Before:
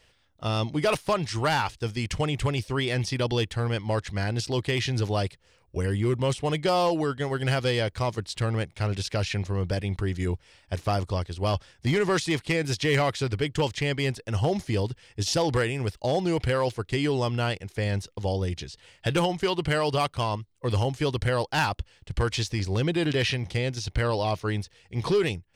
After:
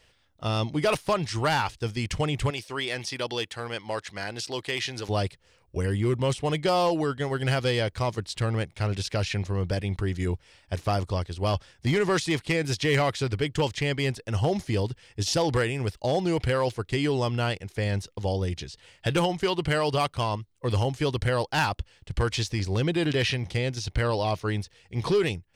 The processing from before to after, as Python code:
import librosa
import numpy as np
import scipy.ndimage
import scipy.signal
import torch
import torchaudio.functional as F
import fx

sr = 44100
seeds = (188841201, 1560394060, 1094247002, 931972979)

y = fx.highpass(x, sr, hz=580.0, slope=6, at=(2.5, 5.09))